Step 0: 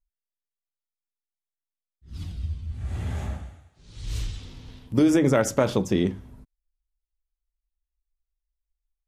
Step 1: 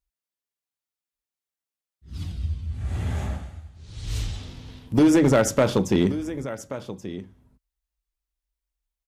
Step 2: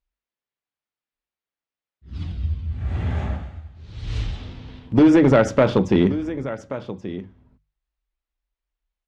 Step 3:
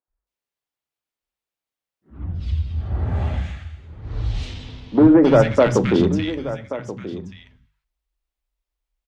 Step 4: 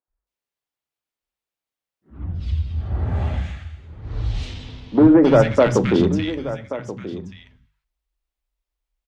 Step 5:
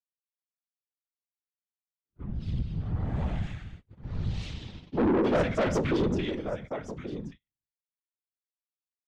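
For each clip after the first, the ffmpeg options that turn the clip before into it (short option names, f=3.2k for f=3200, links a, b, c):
-af "highpass=42,aecho=1:1:1130:0.188,volume=14.5dB,asoftclip=hard,volume=-14.5dB,volume=3dB"
-af "lowpass=3.2k,bandreject=f=50:t=h:w=6,bandreject=f=100:t=h:w=6,bandreject=f=150:t=h:w=6,volume=3.5dB"
-filter_complex "[0:a]acrossover=split=210|1600[a][b][c];[a]adelay=80[d];[c]adelay=270[e];[d][b][e]amix=inputs=3:normalize=0,volume=2.5dB"
-af anull
-af "agate=range=-40dB:threshold=-36dB:ratio=16:detection=peak,afftfilt=real='hypot(re,im)*cos(2*PI*random(0))':imag='hypot(re,im)*sin(2*PI*random(1))':win_size=512:overlap=0.75,asoftclip=type=tanh:threshold=-20.5dB"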